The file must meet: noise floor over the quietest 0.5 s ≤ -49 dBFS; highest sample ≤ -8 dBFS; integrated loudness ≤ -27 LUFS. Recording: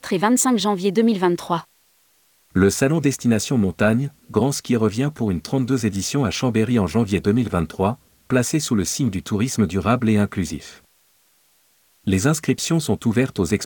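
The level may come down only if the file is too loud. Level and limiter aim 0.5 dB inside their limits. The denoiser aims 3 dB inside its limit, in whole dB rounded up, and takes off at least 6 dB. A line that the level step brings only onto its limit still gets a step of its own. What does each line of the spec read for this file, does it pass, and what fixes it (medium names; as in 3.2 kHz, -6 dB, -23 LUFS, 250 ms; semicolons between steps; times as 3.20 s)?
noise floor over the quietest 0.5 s -60 dBFS: pass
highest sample -2.5 dBFS: fail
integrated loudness -20.5 LUFS: fail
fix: trim -7 dB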